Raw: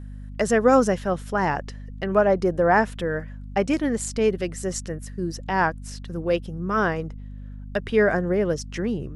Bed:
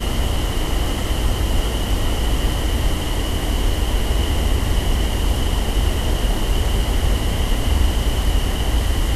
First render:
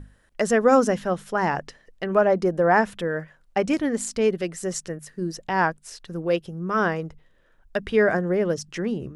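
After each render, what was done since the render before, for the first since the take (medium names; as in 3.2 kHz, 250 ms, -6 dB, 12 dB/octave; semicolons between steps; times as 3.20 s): hum notches 50/100/150/200/250 Hz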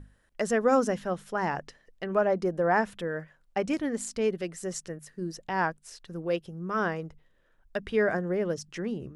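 trim -6 dB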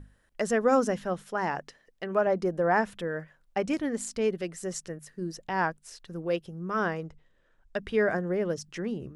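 1.22–2.27 s: bass shelf 110 Hz -9.5 dB; 7.03–7.77 s: brick-wall FIR low-pass 9 kHz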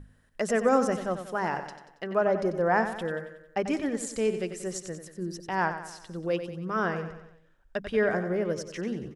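feedback delay 92 ms, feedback 50%, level -10 dB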